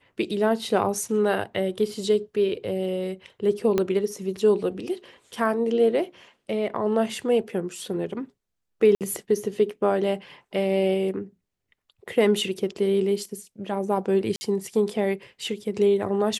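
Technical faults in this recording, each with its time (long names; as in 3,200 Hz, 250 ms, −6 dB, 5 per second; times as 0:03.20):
0:03.78: click −10 dBFS
0:08.95–0:09.01: drop-out 58 ms
0:14.36–0:14.41: drop-out 50 ms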